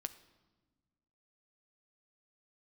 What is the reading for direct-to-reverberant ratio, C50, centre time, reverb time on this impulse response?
11.0 dB, 15.0 dB, 5 ms, 1.3 s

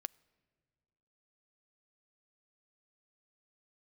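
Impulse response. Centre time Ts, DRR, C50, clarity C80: 1 ms, 19.0 dB, 26.0 dB, 27.0 dB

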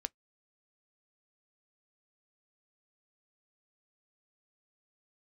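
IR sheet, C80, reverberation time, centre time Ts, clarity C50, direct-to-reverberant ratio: 59.0 dB, no single decay rate, 1 ms, 41.0 dB, 14.5 dB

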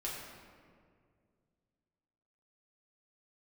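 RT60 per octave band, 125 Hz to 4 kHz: 2.9 s, 2.7 s, 2.4 s, 1.8 s, 1.6 s, 1.1 s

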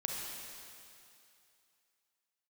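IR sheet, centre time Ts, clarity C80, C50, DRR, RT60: 135 ms, 1.0 dB, -0.5 dB, -1.5 dB, 2.6 s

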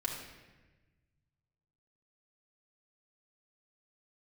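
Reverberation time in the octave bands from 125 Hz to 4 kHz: 2.5 s, 1.6 s, 1.3 s, 1.1 s, 1.3 s, 0.95 s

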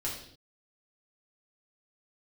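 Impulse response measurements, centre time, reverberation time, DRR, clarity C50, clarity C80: 37 ms, no single decay rate, -6.0 dB, 4.5 dB, 8.0 dB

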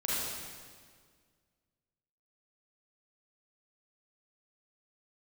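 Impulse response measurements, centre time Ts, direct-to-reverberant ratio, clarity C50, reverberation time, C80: 134 ms, -8.0 dB, -4.5 dB, 1.8 s, -1.5 dB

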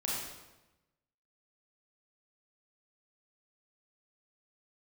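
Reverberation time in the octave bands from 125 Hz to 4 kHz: 1.3 s, 1.2 s, 1.0 s, 1.0 s, 0.90 s, 0.85 s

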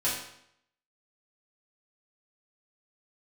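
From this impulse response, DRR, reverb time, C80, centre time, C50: -10.0 dB, 0.70 s, 6.0 dB, 46 ms, 3.0 dB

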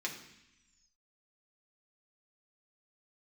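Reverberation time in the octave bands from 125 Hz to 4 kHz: 1.3 s, 1.2 s, 0.75 s, 0.90 s, 1.2 s, 1.8 s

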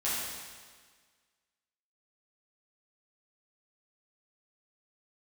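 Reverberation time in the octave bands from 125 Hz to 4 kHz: 1.5 s, 1.6 s, 1.6 s, 1.6 s, 1.6 s, 1.6 s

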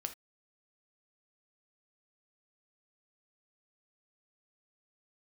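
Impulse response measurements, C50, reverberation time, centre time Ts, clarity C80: 12.5 dB, no single decay rate, 8 ms, 21.5 dB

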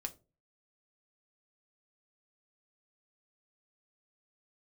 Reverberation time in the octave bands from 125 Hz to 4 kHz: 0.55 s, 0.40 s, 0.40 s, 0.25 s, 0.20 s, 0.20 s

